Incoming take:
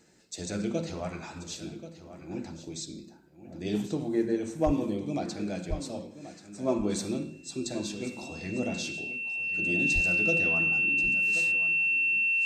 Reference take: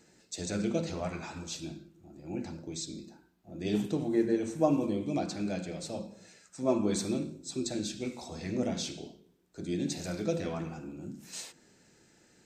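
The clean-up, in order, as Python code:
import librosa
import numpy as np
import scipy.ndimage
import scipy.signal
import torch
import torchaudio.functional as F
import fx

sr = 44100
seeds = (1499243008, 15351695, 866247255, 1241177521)

y = fx.fix_declip(x, sr, threshold_db=-16.5)
y = fx.notch(y, sr, hz=2700.0, q=30.0)
y = fx.fix_deplosive(y, sr, at_s=(4.65, 5.69, 9.94))
y = fx.fix_echo_inverse(y, sr, delay_ms=1083, level_db=-13.5)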